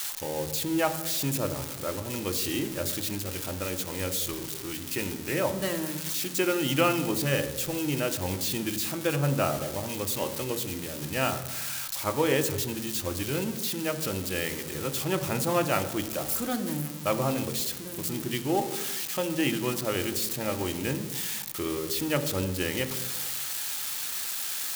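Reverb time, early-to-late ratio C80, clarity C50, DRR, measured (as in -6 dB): 1.1 s, 13.0 dB, 11.0 dB, 8.0 dB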